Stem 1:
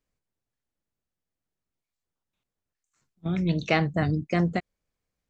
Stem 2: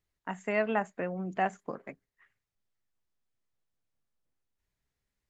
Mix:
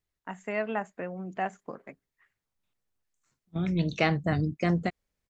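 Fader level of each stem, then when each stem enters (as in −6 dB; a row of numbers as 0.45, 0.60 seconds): −2.0, −2.0 decibels; 0.30, 0.00 seconds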